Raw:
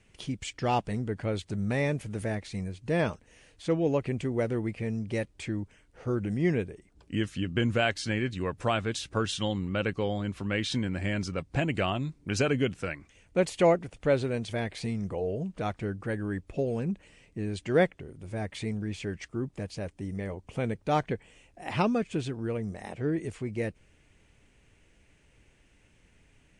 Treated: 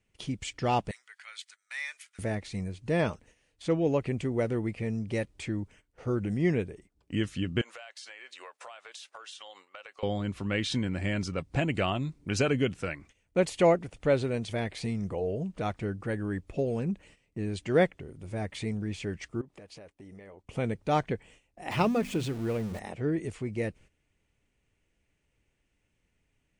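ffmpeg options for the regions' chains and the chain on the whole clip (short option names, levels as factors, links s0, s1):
-filter_complex "[0:a]asettb=1/sr,asplit=3[s0][s1][s2];[s0]atrim=end=0.914[s3];[s1]atrim=start=0.91:end=2.19,asetpts=PTS-STARTPTS,afade=t=in:d=0.004:c=qsin,afade=t=out:st=1.276:d=0.004:c=qsin,highpass=f=1500:w=0.5412,highpass=f=1500:w=1.3066,bandreject=f=2700:w=17[s4];[s2]atrim=start=2.186[s5];[s3][s4]acrossfade=d=0.004:c1=hsin:c2=qsin[s6];[s6][s5]acrossfade=d=0.004:c1=qsin:c2=hsin,asettb=1/sr,asplit=3[s7][s8][s9];[s7]atrim=end=7.614[s10];[s8]atrim=start=7.61:end=10.03,asetpts=PTS-STARTPTS,afade=t=in:d=0.004:c=qsin,afade=t=out:st=2.416:d=0.004:c=qsin,highpass=f=620:w=0.5412,highpass=f=620:w=1.3066,acompressor=threshold=0.00891:ratio=20:attack=3.2:release=140:knee=1:detection=peak[s11];[s9]atrim=start=10.026[s12];[s10][s11]acrossfade=d=0.004:c1=hsin:c2=qsin[s13];[s13][s12]acrossfade=d=0.004:c1=qsin:c2=hsin,asettb=1/sr,asplit=3[s14][s15][s16];[s14]atrim=end=19.414[s17];[s15]atrim=start=19.41:end=20.44,asetpts=PTS-STARTPTS,afade=t=in:d=0.004:c=qsin,afade=t=out:st=1.026:d=0.004:c=qsin,bass=f=250:g=-11,treble=f=4000:g=-5,acompressor=threshold=0.00631:ratio=16:attack=3.2:release=140:knee=1:detection=peak[s18];[s16]atrim=start=20.436[s19];[s17][s18]acrossfade=d=0.004:c1=hsin:c2=qsin[s20];[s20][s19]acrossfade=d=0.004:c1=qsin:c2=hsin,asettb=1/sr,asplit=3[s21][s22][s23];[s21]atrim=end=21.714[s24];[s22]atrim=start=21.71:end=22.79,asetpts=PTS-STARTPTS,afade=t=in:d=0.004:c=qsin,afade=t=out:st=1.076:d=0.004:c=qsin,aeval=exprs='val(0)+0.5*0.0112*sgn(val(0))':c=same,bandreject=f=50:t=h:w=6,bandreject=f=100:t=h:w=6,bandreject=f=150:t=h:w=6,bandreject=f=200:t=h:w=6,bandreject=f=250:t=h:w=6[s25];[s23]atrim=start=22.786[s26];[s24][s25]acrossfade=d=0.004:c1=hsin:c2=qsin[s27];[s27][s26]acrossfade=d=0.004:c1=qsin:c2=hsin,agate=range=0.224:threshold=0.00224:ratio=16:detection=peak,bandreject=f=1600:w=25"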